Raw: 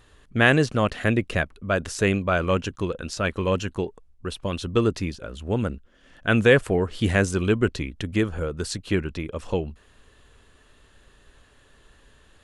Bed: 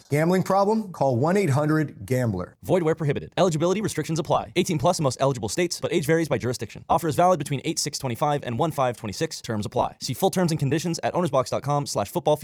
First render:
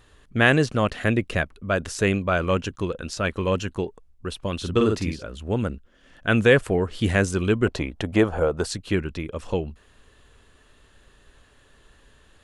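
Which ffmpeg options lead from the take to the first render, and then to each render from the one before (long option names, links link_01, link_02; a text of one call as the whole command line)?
ffmpeg -i in.wav -filter_complex "[0:a]asettb=1/sr,asplit=3[link_01][link_02][link_03];[link_01]atrim=end=4.574[link_04];[link_02]atrim=start=4.57:end=5.24,asetpts=PTS-STARTPTS,afade=type=in:duration=0.004:curve=qsin,afade=type=out:start_time=0.666:duration=0.004:curve=qsin,asplit=2[link_05][link_06];[link_06]adelay=47,volume=-3.5dB[link_07];[link_05][link_07]amix=inputs=2:normalize=0,atrim=end_sample=29547[link_08];[link_03]atrim=start=5.236[link_09];[link_04][link_08]acrossfade=duration=0.004:curve1=hsin:curve2=qsin[link_10];[link_10][link_09]acrossfade=duration=0.004:curve1=qsin:curve2=hsin,asettb=1/sr,asplit=3[link_11][link_12][link_13];[link_11]atrim=end=7.664[link_14];[link_12]atrim=start=7.66:end=8.66,asetpts=PTS-STARTPTS,afade=type=in:duration=0.004:curve=qsin,afade=type=out:start_time=0.996:duration=0.004:curve=qsin,equalizer=frequency=740:width_type=o:width=1.3:gain=15[link_15];[link_13]atrim=start=8.656[link_16];[link_14][link_15]acrossfade=duration=0.004:curve1=hsin:curve2=qsin[link_17];[link_17][link_16]acrossfade=duration=0.004:curve1=qsin:curve2=hsin" out.wav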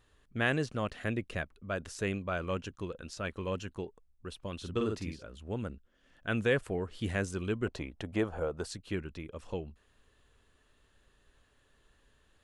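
ffmpeg -i in.wav -af "volume=-12dB" out.wav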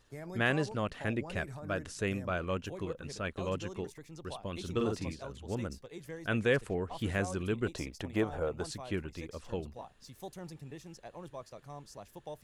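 ffmpeg -i in.wav -i bed.wav -filter_complex "[1:a]volume=-23.5dB[link_01];[0:a][link_01]amix=inputs=2:normalize=0" out.wav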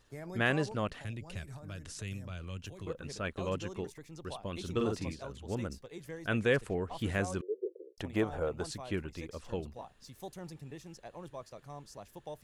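ffmpeg -i in.wav -filter_complex "[0:a]asettb=1/sr,asplit=3[link_01][link_02][link_03];[link_01]atrim=end=0.994[link_04];[link_02]atrim=start=0.99:end=2.87,asetpts=PTS-STARTPTS,afade=type=in:duration=0.004:curve=qsin,afade=type=out:start_time=1.876:duration=0.004:curve=qsin,acrossover=split=150|3000[link_05][link_06][link_07];[link_06]acompressor=threshold=-48dB:ratio=6:attack=3.2:release=140:knee=2.83:detection=peak[link_08];[link_05][link_08][link_07]amix=inputs=3:normalize=0[link_09];[link_03]atrim=start=2.866[link_10];[link_04][link_09]acrossfade=duration=0.004:curve1=hsin:curve2=qsin[link_11];[link_11][link_10]acrossfade=duration=0.004:curve1=qsin:curve2=hsin,asettb=1/sr,asplit=3[link_12][link_13][link_14];[link_12]atrim=end=7.414[link_15];[link_13]atrim=start=7.41:end=7.98,asetpts=PTS-STARTPTS,afade=type=in:duration=0.004:curve=qsin,afade=type=out:start_time=0.566:duration=0.004:curve=qsin,asuperpass=centerf=440:order=8:qfactor=2.5[link_16];[link_14]atrim=start=7.976[link_17];[link_15][link_16]acrossfade=duration=0.004:curve1=hsin:curve2=qsin[link_18];[link_18][link_17]acrossfade=duration=0.004:curve1=qsin:curve2=hsin" out.wav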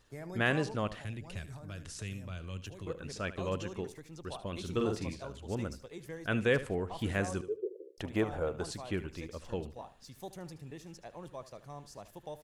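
ffmpeg -i in.wav -af "aecho=1:1:75|150|225:0.178|0.0445|0.0111" out.wav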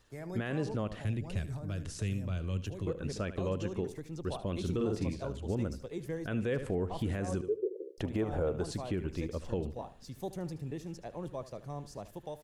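ffmpeg -i in.wav -filter_complex "[0:a]acrossover=split=610|5700[link_01][link_02][link_03];[link_01]dynaudnorm=framelen=150:gausssize=5:maxgain=7.5dB[link_04];[link_04][link_02][link_03]amix=inputs=3:normalize=0,alimiter=limit=-23.5dB:level=0:latency=1:release=145" out.wav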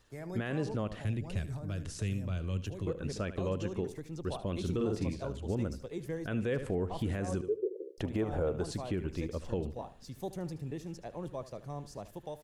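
ffmpeg -i in.wav -af anull out.wav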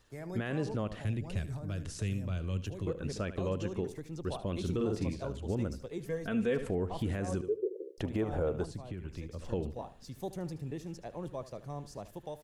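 ffmpeg -i in.wav -filter_complex "[0:a]asettb=1/sr,asplit=3[link_01][link_02][link_03];[link_01]atrim=end=6.044[link_04];[link_02]atrim=start=6.04:end=6.68,asetpts=PTS-STARTPTS,afade=type=in:duration=0.004:curve=qsin,afade=type=out:start_time=0.636:duration=0.004:curve=qsin,aecho=1:1:4.4:0.65,atrim=end_sample=28224[link_05];[link_03]atrim=start=6.676[link_06];[link_04][link_05]acrossfade=duration=0.004:curve1=hsin:curve2=qsin[link_07];[link_07][link_06]acrossfade=duration=0.004:curve1=qsin:curve2=hsin,asettb=1/sr,asplit=3[link_08][link_09][link_10];[link_08]atrim=end=8.644[link_11];[link_09]atrim=start=8.64:end=9.39,asetpts=PTS-STARTPTS,afade=type=in:duration=0.004:curve=qsin,afade=type=out:start_time=0.746:duration=0.004:curve=qsin,acrossover=split=180|650[link_12][link_13][link_14];[link_12]acompressor=threshold=-39dB:ratio=4[link_15];[link_13]acompressor=threshold=-49dB:ratio=4[link_16];[link_14]acompressor=threshold=-54dB:ratio=4[link_17];[link_15][link_16][link_17]amix=inputs=3:normalize=0[link_18];[link_10]atrim=start=9.386[link_19];[link_11][link_18]acrossfade=duration=0.004:curve1=hsin:curve2=qsin[link_20];[link_20][link_19]acrossfade=duration=0.004:curve1=qsin:curve2=hsin" out.wav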